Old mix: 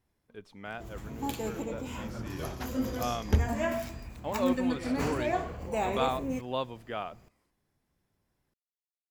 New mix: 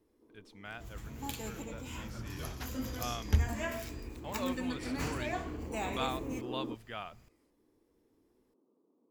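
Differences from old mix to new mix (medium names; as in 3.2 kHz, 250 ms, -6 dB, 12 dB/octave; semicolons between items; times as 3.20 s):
first sound: unmuted; master: add peaking EQ 430 Hz -10 dB 2.8 oct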